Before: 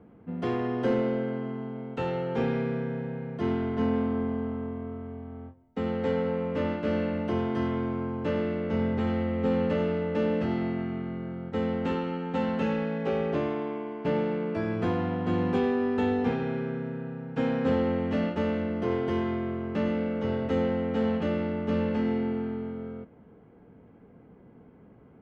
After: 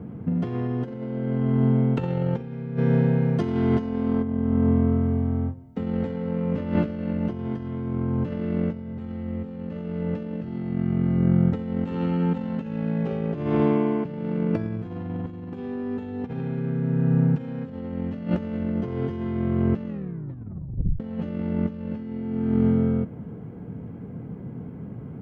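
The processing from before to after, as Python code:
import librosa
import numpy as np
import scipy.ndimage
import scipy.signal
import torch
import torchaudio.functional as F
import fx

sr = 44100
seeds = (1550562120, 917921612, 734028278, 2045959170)

y = fx.bass_treble(x, sr, bass_db=-6, treble_db=8, at=(2.76, 4.22), fade=0.02)
y = fx.edit(y, sr, fx.tape_stop(start_s=19.87, length_s=1.13), tone=tone)
y = fx.peak_eq(y, sr, hz=130.0, db=14.5, octaves=1.9)
y = fx.over_compress(y, sr, threshold_db=-26.0, ratio=-0.5)
y = y * librosa.db_to_amplitude(2.0)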